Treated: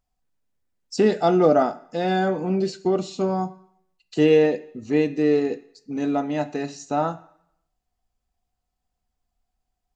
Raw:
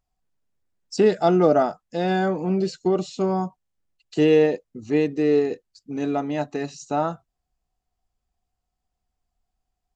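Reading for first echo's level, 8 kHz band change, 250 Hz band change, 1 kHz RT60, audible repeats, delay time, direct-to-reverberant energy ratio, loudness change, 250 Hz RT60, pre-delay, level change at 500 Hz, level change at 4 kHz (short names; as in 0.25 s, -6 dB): none, n/a, +0.5 dB, 0.75 s, none, none, 9.0 dB, 0.0 dB, 0.65 s, 3 ms, 0.0 dB, +0.5 dB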